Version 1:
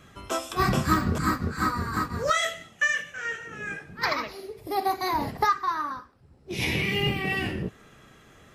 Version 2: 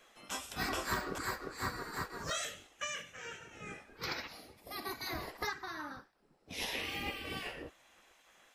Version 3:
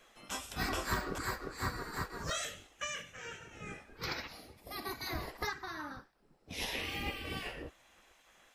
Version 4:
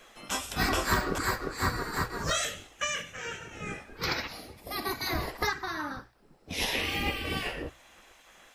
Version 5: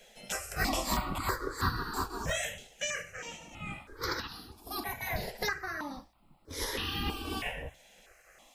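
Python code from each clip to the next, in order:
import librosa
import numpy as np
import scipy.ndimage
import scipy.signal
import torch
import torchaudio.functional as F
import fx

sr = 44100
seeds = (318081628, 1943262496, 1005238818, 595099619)

y1 = fx.spec_gate(x, sr, threshold_db=-10, keep='weak')
y1 = F.gain(torch.from_numpy(y1), -5.5).numpy()
y2 = fx.low_shelf(y1, sr, hz=110.0, db=8.5)
y3 = fx.hum_notches(y2, sr, base_hz=60, count=2)
y3 = F.gain(torch.from_numpy(y3), 8.0).numpy()
y4 = fx.phaser_held(y3, sr, hz=3.1, low_hz=310.0, high_hz=2200.0)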